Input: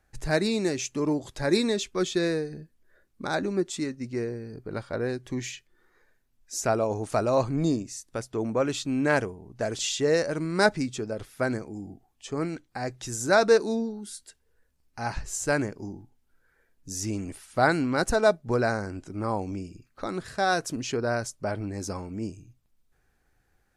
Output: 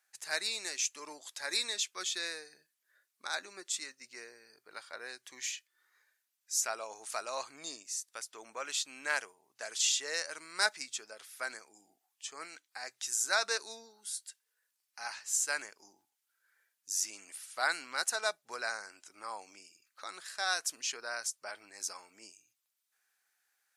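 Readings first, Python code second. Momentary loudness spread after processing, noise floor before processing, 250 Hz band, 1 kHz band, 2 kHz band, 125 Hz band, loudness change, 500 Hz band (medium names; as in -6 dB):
17 LU, -70 dBFS, -30.0 dB, -10.5 dB, -5.0 dB, under -40 dB, -7.5 dB, -19.0 dB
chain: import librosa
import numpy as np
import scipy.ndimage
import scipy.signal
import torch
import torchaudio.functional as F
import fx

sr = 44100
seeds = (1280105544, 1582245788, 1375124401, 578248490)

y = scipy.signal.sosfilt(scipy.signal.butter(2, 1200.0, 'highpass', fs=sr, output='sos'), x)
y = fx.high_shelf(y, sr, hz=3600.0, db=8.5)
y = y * 10.0 ** (-5.0 / 20.0)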